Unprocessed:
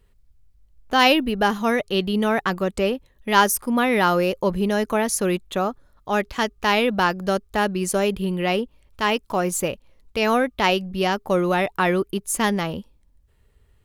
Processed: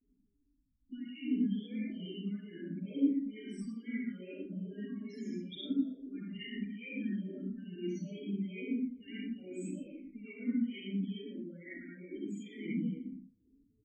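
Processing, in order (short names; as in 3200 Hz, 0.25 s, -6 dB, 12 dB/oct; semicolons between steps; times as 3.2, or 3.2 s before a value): low-pass opened by the level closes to 1500 Hz, open at -17 dBFS; high shelf 7800 Hz -8 dB; negative-ratio compressor -31 dBFS, ratio -1; vowel filter i; loudest bins only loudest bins 8; vibrato 0.75 Hz 98 cents; on a send: echo 0.12 s -11 dB; on the sum: digital reverb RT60 0.75 s, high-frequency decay 0.6×, pre-delay 25 ms, DRR -9 dB; endless phaser -2.3 Hz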